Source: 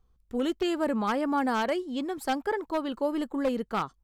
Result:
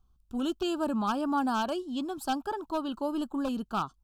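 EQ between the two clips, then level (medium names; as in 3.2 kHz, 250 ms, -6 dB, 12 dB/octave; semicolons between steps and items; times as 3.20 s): Butterworth band-stop 2 kHz, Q 1.8; peaking EQ 480 Hz -14.5 dB 0.38 oct; 0.0 dB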